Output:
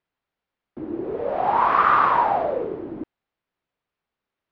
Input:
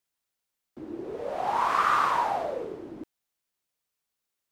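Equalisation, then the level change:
low-pass filter 2,800 Hz 6 dB per octave
high-frequency loss of the air 250 metres
+8.5 dB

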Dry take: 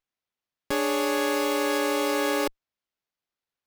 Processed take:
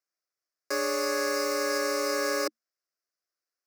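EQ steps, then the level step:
Chebyshev high-pass with heavy ripple 220 Hz, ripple 6 dB
parametric band 5,200 Hz +14 dB 0.72 octaves
phaser with its sweep stopped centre 880 Hz, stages 6
+3.0 dB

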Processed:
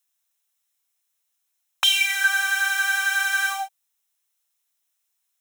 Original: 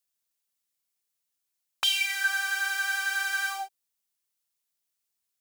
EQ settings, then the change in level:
high-pass filter 630 Hz 24 dB per octave
Butterworth band-reject 4,600 Hz, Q 8
+6.5 dB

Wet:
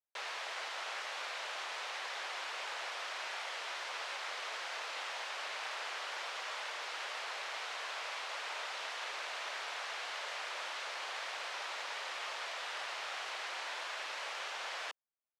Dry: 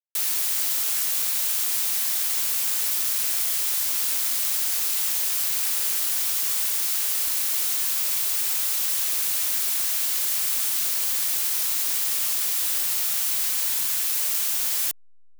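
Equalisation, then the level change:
high-pass filter 530 Hz 24 dB per octave
head-to-tape spacing loss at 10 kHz 38 dB
high-shelf EQ 5,200 Hz −6 dB
+6.0 dB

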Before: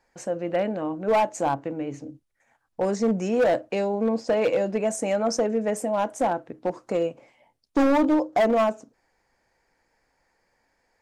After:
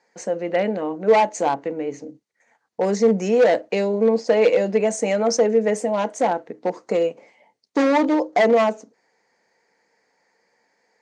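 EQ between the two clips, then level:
notch filter 810 Hz, Q 12
dynamic equaliser 3,100 Hz, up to +4 dB, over −45 dBFS, Q 1.3
loudspeaker in its box 190–8,900 Hz, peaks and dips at 200 Hz +7 dB, 450 Hz +9 dB, 820 Hz +7 dB, 2,000 Hz +7 dB, 4,400 Hz +6 dB, 6,300 Hz +6 dB
0.0 dB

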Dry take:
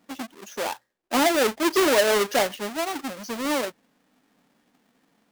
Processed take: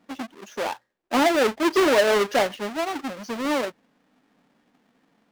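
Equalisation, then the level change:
high-shelf EQ 6,100 Hz −11.5 dB
+1.5 dB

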